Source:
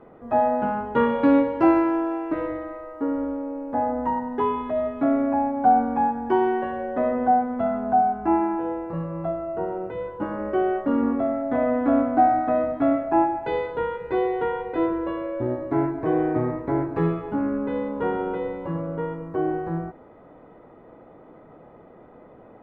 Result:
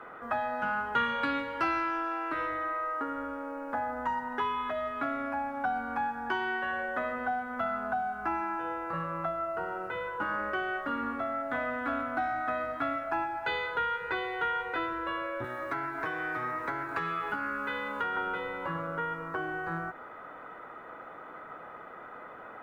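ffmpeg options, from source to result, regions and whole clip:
-filter_complex "[0:a]asettb=1/sr,asplit=3[a][b][c];[a]atrim=end=15.444[d];[b]atrim=start=15.44:end=18.17,asetpts=PTS-STARTPTS,afade=t=in:d=0.004:c=qsin,afade=t=out:st=2.726:d=0.004:c=qsin,acrossover=split=130|1000[e][f][g];[e]acompressor=threshold=-47dB:ratio=4[h];[f]acompressor=threshold=-32dB:ratio=4[i];[g]acompressor=threshold=-43dB:ratio=4[j];[h][i][j]amix=inputs=3:normalize=0,highshelf=f=2.7k:g=8.5[k];[c]atrim=start=18.166[l];[d][k]acrossfade=d=0.004:c1=hsin:c2=qsin[m];[m][l]acrossfade=d=0.004:c1=qsin:c2=hsin,equalizer=f=1.4k:t=o:w=0.66:g=12,acrossover=split=170|3000[n][o][p];[o]acompressor=threshold=-33dB:ratio=5[q];[n][q][p]amix=inputs=3:normalize=0,tiltshelf=f=690:g=-9.5"

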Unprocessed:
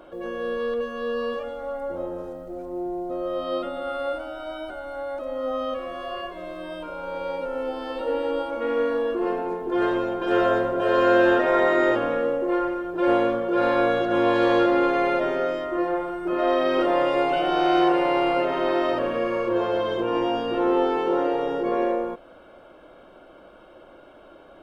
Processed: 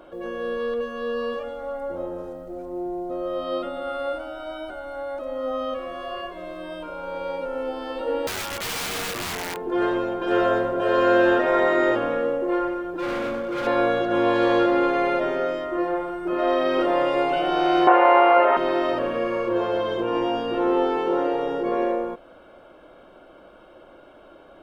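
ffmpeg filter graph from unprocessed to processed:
-filter_complex "[0:a]asettb=1/sr,asplit=3[a][b][c];[a]atrim=end=8.274[d];[b]atrim=start=8.27:end=9.57,asetpts=PTS-STARTPTS,afade=t=in:d=0.004:c=qsin,afade=t=out:st=1.296:d=0.004:c=qsin,tiltshelf=f=800:g=-8,aeval=exprs='(mod(16.8*val(0)+1,2)-1)/16.8':c=same[e];[c]atrim=start=9.566[f];[d][e]acrossfade=d=0.004:c1=hsin:c2=qsin[g];[g][f]acrossfade=d=0.004:c1=qsin:c2=hsin,asettb=1/sr,asplit=3[h][i][j];[h]atrim=end=12.964[k];[i]atrim=start=12.96:end=13.67,asetpts=PTS-STARTPTS,afade=t=in:d=0.004:c=qsin,afade=t=out:st=0.706:d=0.004:c=qsin,equalizer=f=590:w=0.55:g=-5,aecho=1:1:3.7:0.71,atrim=end_sample=31311,asoftclip=type=hard:threshold=-24.5dB[l];[j]atrim=start=13.666[m];[k][l]acrossfade=d=0.004:c1=hsin:c2=qsin[n];[n][m]acrossfade=d=0.004:c1=qsin:c2=hsin,asettb=1/sr,asplit=3[o][p][q];[o]atrim=end=17.874[r];[p]atrim=start=17.87:end=18.57,asetpts=PTS-STARTPTS,afade=t=in:d=0.004:c=qsin,afade=t=out:st=0.696:d=0.004:c=qsin,highpass=410,lowpass=2.6k,equalizer=f=1.1k:w=0.5:g=11[s];[q]atrim=start=18.566[t];[r][s]acrossfade=d=0.004:c1=hsin:c2=qsin[u];[u][t]acrossfade=d=0.004:c1=qsin:c2=hsin"

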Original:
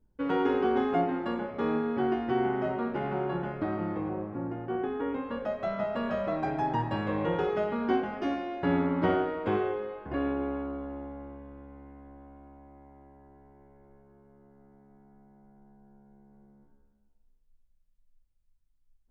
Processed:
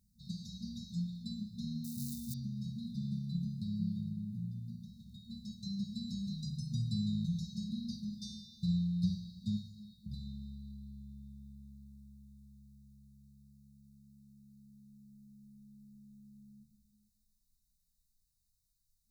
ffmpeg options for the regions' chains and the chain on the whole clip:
-filter_complex "[0:a]asettb=1/sr,asplit=3[a][b][c];[a]atrim=end=1.844[d];[b]atrim=start=1.84:end=2.34,asetpts=PTS-STARTPTS,afade=t=in:d=0.004:c=qsin,afade=t=out:st=0.496:d=0.004:c=qsin,lowpass=f=2.7k:p=1,acrusher=bits=8:mode=log:mix=0:aa=0.000001[e];[c]atrim=start=2.336[f];[d][e]acrossfade=d=0.004:c1=hsin:c2=qsin[g];[g][f]acrossfade=d=0.004:c1=qsin:c2=hsin,highpass=f=120:p=1,afftfilt=real='re*(1-between(b*sr/4096,230,3600))':imag='im*(1-between(b*sr/4096,230,3600))':win_size=4096:overlap=0.75,highshelf=f=2k:g=10,volume=3dB"

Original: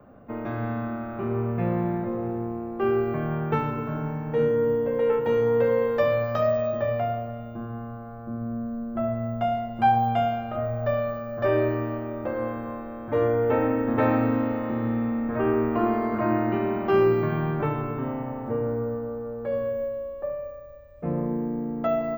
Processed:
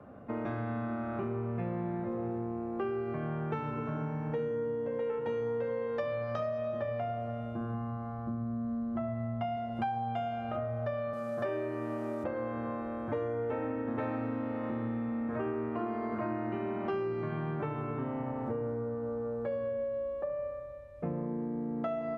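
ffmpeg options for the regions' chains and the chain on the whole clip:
-filter_complex "[0:a]asettb=1/sr,asplit=3[a][b][c];[a]atrim=end=7.744[d];[b]atrim=start=7.74:end=9.57,asetpts=PTS-STARTPTS,afade=t=in:d=0.004:c=qsin,afade=t=out:st=1.826:d=0.004:c=qsin,lowpass=5.9k,aecho=1:1:1:0.4,atrim=end_sample=80703[e];[c]atrim=start=9.566[f];[d][e]acrossfade=d=0.004:c1=hsin:c2=qsin[g];[g][f]acrossfade=d=0.004:c1=qsin:c2=hsin,asettb=1/sr,asplit=3[h][i][j];[h]atrim=end=11.134[k];[i]atrim=start=11.13:end=12.24,asetpts=PTS-STARTPTS,afade=t=in:d=0.004:c=qsin,afade=t=out:st=1.106:d=0.004:c=qsin,highpass=f=130:w=0.5412,highpass=f=130:w=1.3066,acrusher=bits=8:mix=0:aa=0.5[l];[j]atrim=start=12.236[m];[k][l]acrossfade=d=0.004:c1=hsin:c2=qsin[n];[n][m]acrossfade=d=0.004:c1=qsin:c2=hsin,highpass=52,acompressor=threshold=-32dB:ratio=6,lowpass=11k"

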